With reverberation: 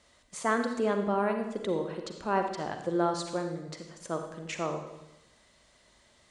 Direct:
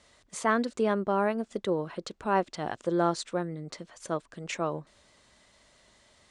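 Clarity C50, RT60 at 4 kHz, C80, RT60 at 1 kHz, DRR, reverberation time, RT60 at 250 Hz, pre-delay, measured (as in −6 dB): 6.0 dB, 0.90 s, 8.0 dB, 0.90 s, 5.0 dB, 0.90 s, 1.0 s, 38 ms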